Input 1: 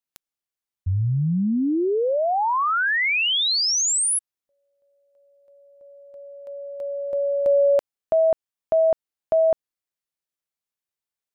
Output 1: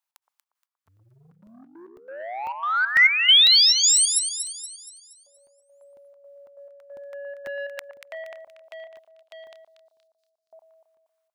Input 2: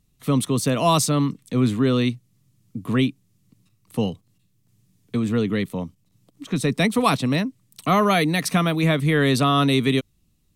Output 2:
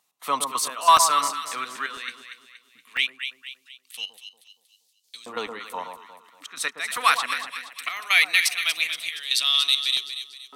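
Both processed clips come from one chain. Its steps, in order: trance gate "x.xx.x..xxx" 137 bpm -12 dB; echo whose repeats swap between lows and highs 118 ms, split 1.1 kHz, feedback 66%, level -5.5 dB; in parallel at -8 dB: saturation -17.5 dBFS; on the sum: LFO high-pass saw up 0.19 Hz 850–4700 Hz; crackling interface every 0.50 s, samples 64, zero, from 0.97 s

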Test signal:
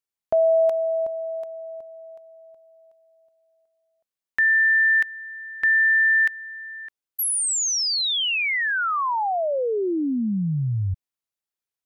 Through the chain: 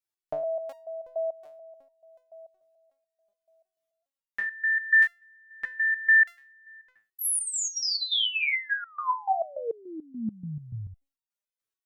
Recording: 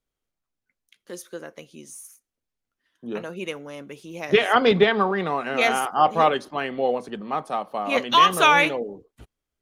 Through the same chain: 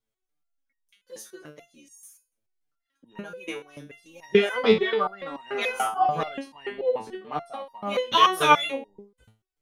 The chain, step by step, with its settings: resonator arpeggio 6.9 Hz 110–930 Hz; trim +8.5 dB

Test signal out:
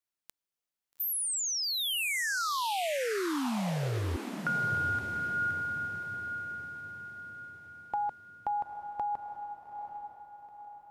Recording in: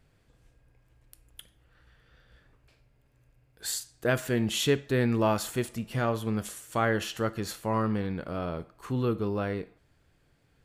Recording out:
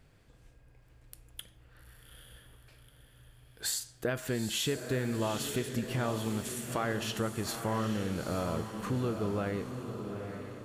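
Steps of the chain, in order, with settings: compression 5:1, threshold -33 dBFS; on a send: echo that smears into a reverb 858 ms, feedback 45%, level -7 dB; on the sum: trim +3 dB

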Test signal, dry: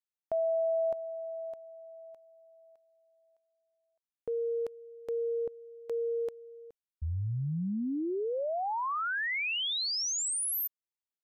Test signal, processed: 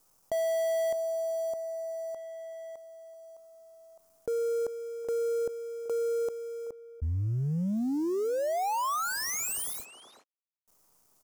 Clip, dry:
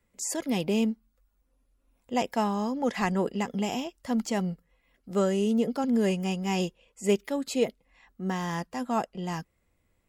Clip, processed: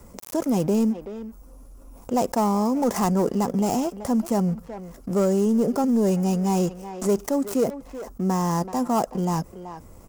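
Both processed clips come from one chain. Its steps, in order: dead-time distortion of 0.12 ms; high-order bell 2.6 kHz -13 dB; waveshaping leveller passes 1; speakerphone echo 380 ms, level -23 dB; level flattener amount 50%

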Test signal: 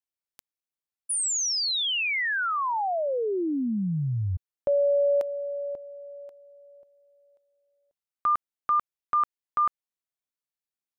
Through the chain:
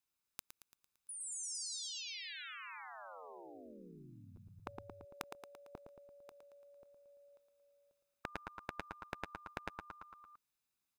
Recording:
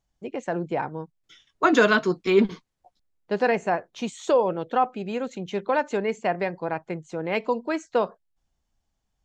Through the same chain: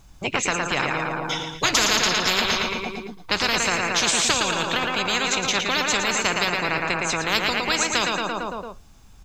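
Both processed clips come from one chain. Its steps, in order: comb 0.8 ms, depth 36%; feedback delay 113 ms, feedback 52%, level -9 dB; spectrum-flattening compressor 10:1

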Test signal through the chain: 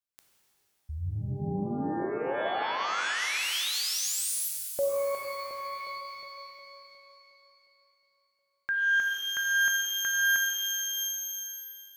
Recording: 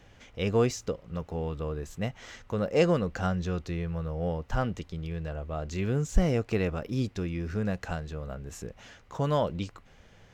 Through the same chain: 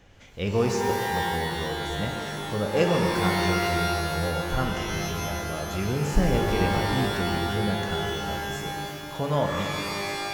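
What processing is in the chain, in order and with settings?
pitch-shifted reverb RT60 2.4 s, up +12 st, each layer -2 dB, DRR 2 dB

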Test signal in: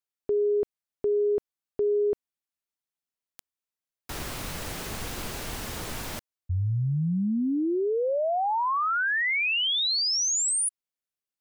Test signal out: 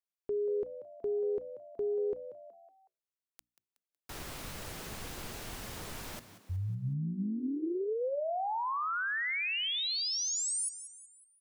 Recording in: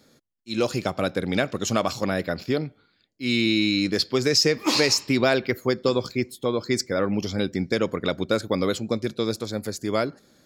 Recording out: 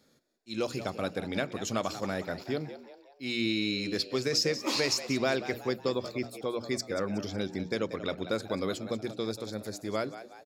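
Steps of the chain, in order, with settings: hum notches 60/120/180/240/300 Hz; on a send: frequency-shifting echo 185 ms, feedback 45%, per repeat +89 Hz, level -13 dB; on the sum: trim -8 dB

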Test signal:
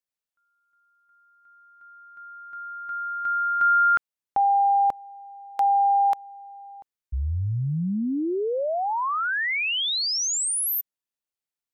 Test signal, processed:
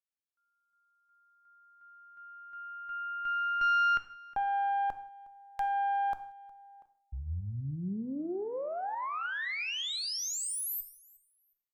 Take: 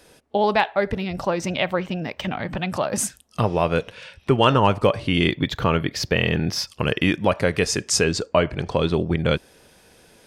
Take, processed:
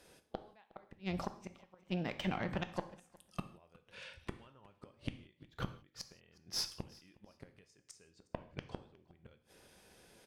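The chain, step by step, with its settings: inverted gate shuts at -14 dBFS, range -35 dB; valve stage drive 16 dB, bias 0.6; on a send: feedback delay 362 ms, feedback 21%, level -24 dB; on the sum: gated-style reverb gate 200 ms falling, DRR 9.5 dB; trim -7.5 dB

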